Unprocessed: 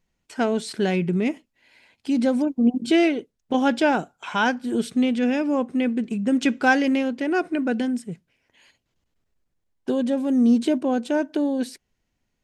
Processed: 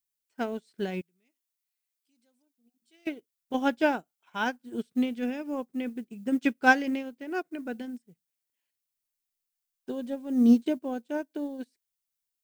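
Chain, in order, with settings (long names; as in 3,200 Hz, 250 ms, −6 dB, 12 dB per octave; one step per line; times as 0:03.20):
0:01.01–0:03.07: first-order pre-emphasis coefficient 0.9
background noise blue −53 dBFS
expander for the loud parts 2.5 to 1, over −36 dBFS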